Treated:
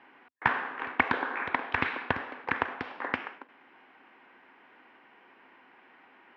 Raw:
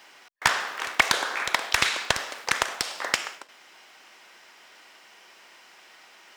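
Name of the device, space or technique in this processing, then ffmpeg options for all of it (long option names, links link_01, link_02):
bass cabinet: -af "highpass=74,equalizer=frequency=89:width_type=q:width=4:gain=4,equalizer=frequency=260:width_type=q:width=4:gain=10,equalizer=frequency=620:width_type=q:width=4:gain=-7,equalizer=frequency=1300:width_type=q:width=4:gain=-5,equalizer=frequency=2000:width_type=q:width=4:gain=-4,lowpass=frequency=2100:width=0.5412,lowpass=frequency=2100:width=1.3066"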